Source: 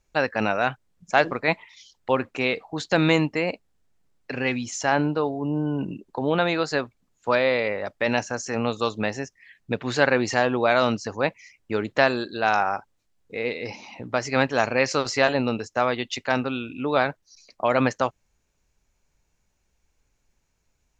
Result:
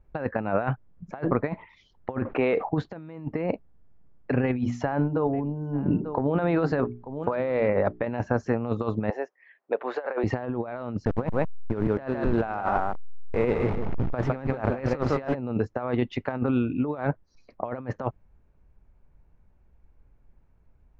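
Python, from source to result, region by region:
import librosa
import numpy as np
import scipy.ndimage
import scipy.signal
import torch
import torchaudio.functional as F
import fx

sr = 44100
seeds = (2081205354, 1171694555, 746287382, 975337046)

y = fx.chain(x, sr, fx.bass_treble(bass_db=-13, treble_db=-7),
    fx.env_lowpass(base_hz=2800.0, full_db=-25.0),
    fx.env_flatten(amount_pct=50), at=(2.25, 2.69))
y = fx.chain(y, sr, fx.hum_notches(base_hz=60, count=7),
    fx.echo_single(ms=889, db=-21.0),
    fx.over_compress(threshold_db=-28.0, ratio=-1.0), at=(4.44, 8.04))
y = fx.chain(y, sr, fx.highpass(hz=500.0, slope=24),
    fx.tilt_shelf(db=4.0, hz=920.0), at=(9.1, 10.24))
y = fx.chain(y, sr, fx.delta_hold(step_db=-30.0),
    fx.high_shelf(hz=4800.0, db=4.0),
    fx.echo_single(ms=157, db=-7.5), at=(11.05, 15.35))
y = scipy.signal.sosfilt(scipy.signal.butter(2, 1300.0, 'lowpass', fs=sr, output='sos'), y)
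y = fx.low_shelf(y, sr, hz=200.0, db=9.0)
y = fx.over_compress(y, sr, threshold_db=-26.0, ratio=-0.5)
y = y * 10.0 ** (1.0 / 20.0)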